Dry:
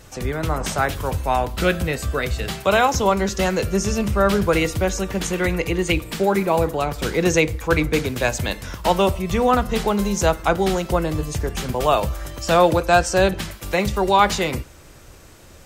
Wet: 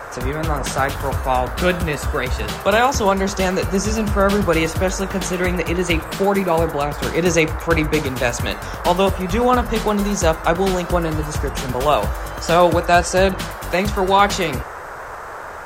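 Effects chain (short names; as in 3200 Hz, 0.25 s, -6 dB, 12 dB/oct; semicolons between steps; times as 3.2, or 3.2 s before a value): vibrato 9.4 Hz 23 cents; band noise 420–1600 Hz -34 dBFS; gain +1.5 dB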